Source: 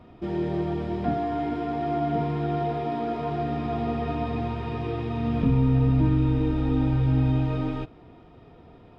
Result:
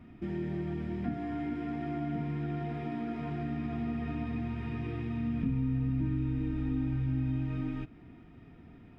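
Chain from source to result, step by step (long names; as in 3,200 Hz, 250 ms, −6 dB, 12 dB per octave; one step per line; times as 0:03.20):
octave-band graphic EQ 250/500/1,000/2,000/4,000 Hz +6/−11/−7/+6/−8 dB
downward compressor 2 to 1, threshold −32 dBFS, peak gain reduction 9 dB
level −2.5 dB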